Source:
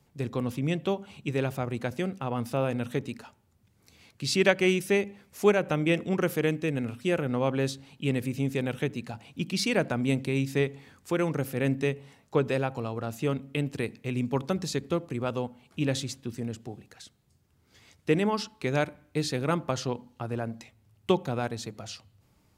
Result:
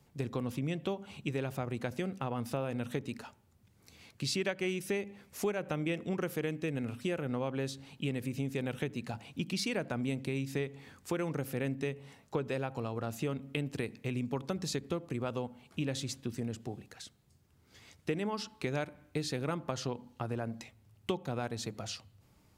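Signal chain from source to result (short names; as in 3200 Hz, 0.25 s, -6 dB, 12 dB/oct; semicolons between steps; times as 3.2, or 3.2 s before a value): compressor 4:1, threshold -32 dBFS, peak gain reduction 13.5 dB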